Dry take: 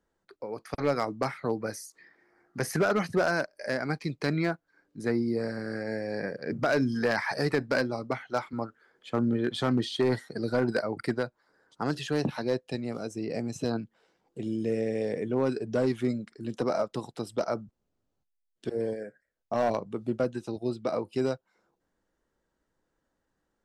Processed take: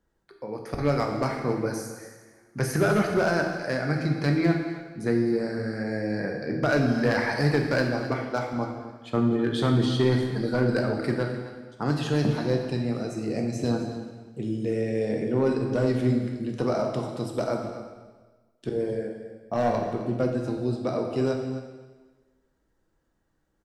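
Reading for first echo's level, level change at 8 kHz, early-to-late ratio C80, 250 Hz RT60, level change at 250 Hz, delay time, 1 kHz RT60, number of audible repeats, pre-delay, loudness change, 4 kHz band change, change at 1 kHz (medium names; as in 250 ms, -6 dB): -13.5 dB, +2.5 dB, 5.5 dB, 1.3 s, +4.5 dB, 260 ms, 1.3 s, 1, 4 ms, +4.0 dB, +2.5 dB, +2.5 dB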